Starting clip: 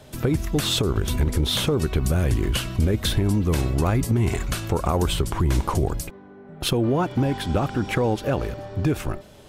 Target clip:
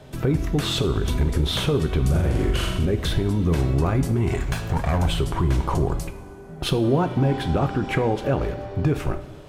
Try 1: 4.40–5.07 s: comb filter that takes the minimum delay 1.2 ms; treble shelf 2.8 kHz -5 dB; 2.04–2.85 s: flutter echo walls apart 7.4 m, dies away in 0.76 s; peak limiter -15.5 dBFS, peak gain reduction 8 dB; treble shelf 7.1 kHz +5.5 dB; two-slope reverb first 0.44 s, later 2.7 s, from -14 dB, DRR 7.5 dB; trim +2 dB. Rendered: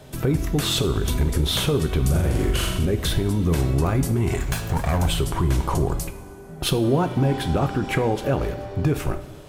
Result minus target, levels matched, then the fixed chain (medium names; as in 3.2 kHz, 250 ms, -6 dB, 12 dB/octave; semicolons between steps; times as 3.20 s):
8 kHz band +6.0 dB
4.40–5.07 s: comb filter that takes the minimum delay 1.2 ms; treble shelf 2.8 kHz -5 dB; 2.04–2.85 s: flutter echo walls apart 7.4 m, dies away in 0.76 s; peak limiter -15.5 dBFS, peak gain reduction 8 dB; treble shelf 7.1 kHz -6 dB; two-slope reverb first 0.44 s, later 2.7 s, from -14 dB, DRR 7.5 dB; trim +2 dB